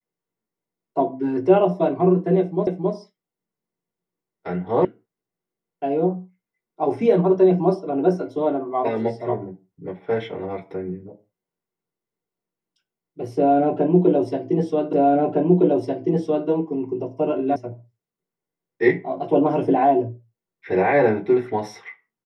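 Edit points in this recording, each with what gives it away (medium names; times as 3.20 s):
2.67 s: repeat of the last 0.27 s
4.85 s: sound stops dead
14.93 s: repeat of the last 1.56 s
17.56 s: sound stops dead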